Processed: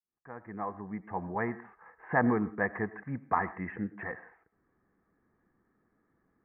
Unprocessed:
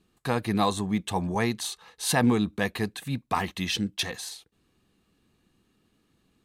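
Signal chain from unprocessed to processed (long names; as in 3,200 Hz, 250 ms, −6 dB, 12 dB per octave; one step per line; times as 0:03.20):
fade in at the beginning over 1.95 s
Butterworth low-pass 2,000 Hz 72 dB per octave
low-shelf EQ 320 Hz −8.5 dB
on a send: convolution reverb, pre-delay 77 ms, DRR 16.5 dB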